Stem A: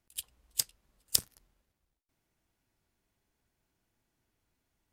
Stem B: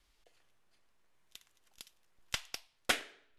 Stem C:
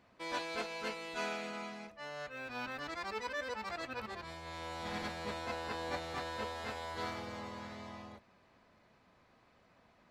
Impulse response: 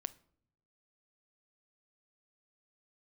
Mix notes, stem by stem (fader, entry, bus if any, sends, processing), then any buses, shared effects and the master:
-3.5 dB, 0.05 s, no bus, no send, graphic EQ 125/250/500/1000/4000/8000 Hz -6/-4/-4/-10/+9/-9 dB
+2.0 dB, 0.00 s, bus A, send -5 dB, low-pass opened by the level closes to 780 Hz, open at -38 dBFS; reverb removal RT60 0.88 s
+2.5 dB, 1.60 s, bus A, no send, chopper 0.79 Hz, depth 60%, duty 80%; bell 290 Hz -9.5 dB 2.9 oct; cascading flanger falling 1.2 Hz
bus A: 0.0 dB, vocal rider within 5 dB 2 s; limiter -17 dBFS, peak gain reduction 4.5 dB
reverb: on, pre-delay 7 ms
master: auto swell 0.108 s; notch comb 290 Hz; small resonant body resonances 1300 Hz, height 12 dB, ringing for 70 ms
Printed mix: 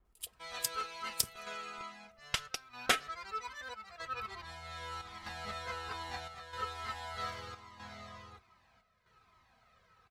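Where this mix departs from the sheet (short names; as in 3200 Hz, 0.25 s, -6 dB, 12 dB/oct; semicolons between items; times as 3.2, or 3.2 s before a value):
stem A: missing graphic EQ 125/250/500/1000/4000/8000 Hz -6/-4/-4/-10/+9/-9 dB; stem C: entry 1.60 s -> 0.20 s; master: missing auto swell 0.108 s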